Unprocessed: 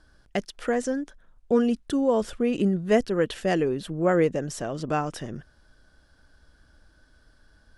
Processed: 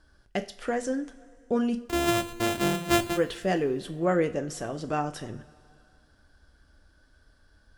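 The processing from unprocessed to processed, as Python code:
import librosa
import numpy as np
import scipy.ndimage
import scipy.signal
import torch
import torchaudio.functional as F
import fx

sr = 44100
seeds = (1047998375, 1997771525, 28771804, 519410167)

y = fx.sample_sort(x, sr, block=128, at=(1.78, 3.16), fade=0.02)
y = fx.rev_double_slope(y, sr, seeds[0], early_s=0.34, late_s=2.5, knee_db=-19, drr_db=7.0)
y = y * 10.0 ** (-3.0 / 20.0)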